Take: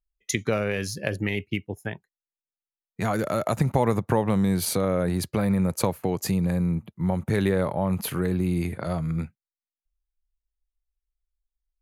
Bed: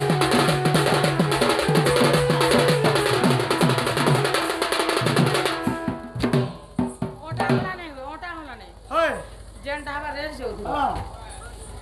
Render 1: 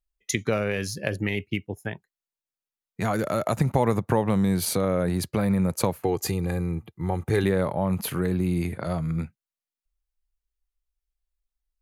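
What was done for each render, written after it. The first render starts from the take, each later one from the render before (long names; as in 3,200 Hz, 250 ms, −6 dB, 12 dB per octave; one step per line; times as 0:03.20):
0:06.04–0:07.44: comb filter 2.5 ms, depth 56%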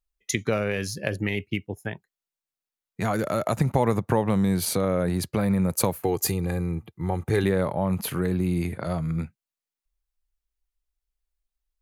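0:05.70–0:06.33: high-shelf EQ 9,300 Hz +11 dB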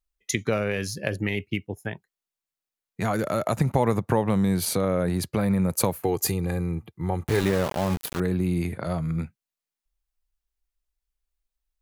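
0:07.27–0:08.20: centre clipping without the shift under −26 dBFS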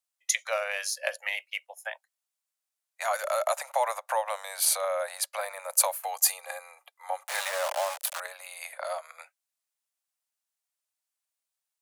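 Butterworth high-pass 550 Hz 96 dB per octave
parametric band 8,900 Hz +6 dB 1.1 octaves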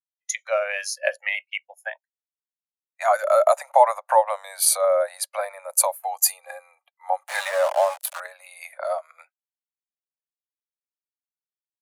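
automatic gain control gain up to 6.5 dB
every bin expanded away from the loudest bin 1.5 to 1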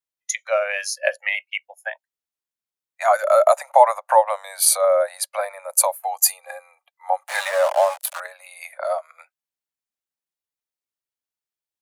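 level +2.5 dB
brickwall limiter −1 dBFS, peak gain reduction 1 dB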